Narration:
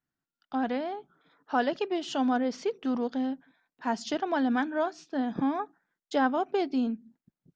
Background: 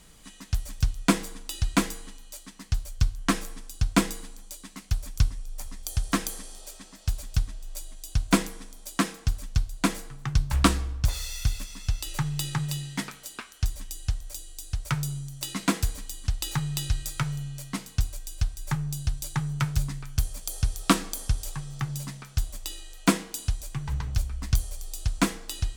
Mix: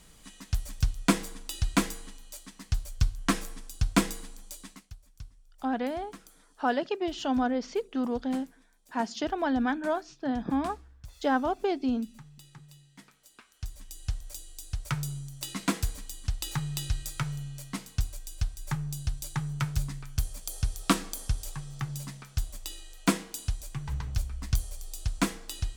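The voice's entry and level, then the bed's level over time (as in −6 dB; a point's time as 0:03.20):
5.10 s, −0.5 dB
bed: 0:04.70 −2 dB
0:04.96 −22.5 dB
0:12.91 −22.5 dB
0:14.15 −3.5 dB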